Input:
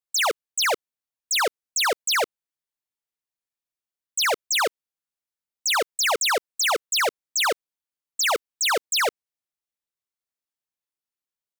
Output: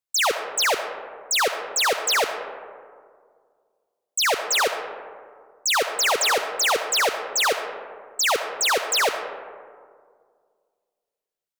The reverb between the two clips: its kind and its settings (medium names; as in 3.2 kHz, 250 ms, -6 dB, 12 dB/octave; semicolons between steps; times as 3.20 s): algorithmic reverb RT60 2 s, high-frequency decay 0.35×, pre-delay 30 ms, DRR 7 dB; trim +1 dB